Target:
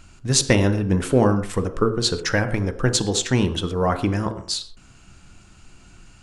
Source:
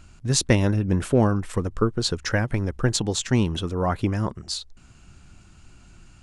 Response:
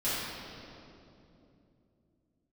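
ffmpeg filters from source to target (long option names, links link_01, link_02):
-filter_complex "[0:a]lowshelf=frequency=340:gain=-3.5,bandreject=frequency=55.1:width_type=h:width=4,bandreject=frequency=110.2:width_type=h:width=4,bandreject=frequency=165.3:width_type=h:width=4,bandreject=frequency=220.4:width_type=h:width=4,bandreject=frequency=275.5:width_type=h:width=4,bandreject=frequency=330.6:width_type=h:width=4,bandreject=frequency=385.7:width_type=h:width=4,bandreject=frequency=440.8:width_type=h:width=4,bandreject=frequency=495.9:width_type=h:width=4,bandreject=frequency=551:width_type=h:width=4,bandreject=frequency=606.1:width_type=h:width=4,bandreject=frequency=661.2:width_type=h:width=4,bandreject=frequency=716.3:width_type=h:width=4,bandreject=frequency=771.4:width_type=h:width=4,bandreject=frequency=826.5:width_type=h:width=4,bandreject=frequency=881.6:width_type=h:width=4,bandreject=frequency=936.7:width_type=h:width=4,bandreject=frequency=991.8:width_type=h:width=4,bandreject=frequency=1046.9:width_type=h:width=4,bandreject=frequency=1102:width_type=h:width=4,bandreject=frequency=1157.1:width_type=h:width=4,bandreject=frequency=1212.2:width_type=h:width=4,bandreject=frequency=1267.3:width_type=h:width=4,bandreject=frequency=1322.4:width_type=h:width=4,bandreject=frequency=1377.5:width_type=h:width=4,bandreject=frequency=1432.6:width_type=h:width=4,bandreject=frequency=1487.7:width_type=h:width=4,bandreject=frequency=1542.8:width_type=h:width=4,bandreject=frequency=1597.9:width_type=h:width=4,bandreject=frequency=1653:width_type=h:width=4,bandreject=frequency=1708.1:width_type=h:width=4,asplit=2[link_01][link_02];[link_02]equalizer=frequency=430:width=2.1:gain=9[link_03];[1:a]atrim=start_sample=2205,afade=type=out:start_time=0.18:duration=0.01,atrim=end_sample=8379[link_04];[link_03][link_04]afir=irnorm=-1:irlink=0,volume=-19dB[link_05];[link_01][link_05]amix=inputs=2:normalize=0,volume=3.5dB"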